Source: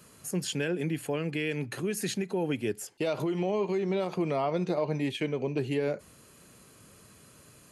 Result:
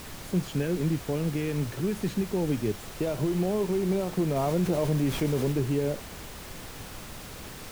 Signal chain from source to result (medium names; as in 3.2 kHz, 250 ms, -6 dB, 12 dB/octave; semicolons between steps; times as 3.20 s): tilt EQ -3.5 dB/octave; added noise pink -38 dBFS; 4.36–5.52 s: level flattener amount 50%; trim -3.5 dB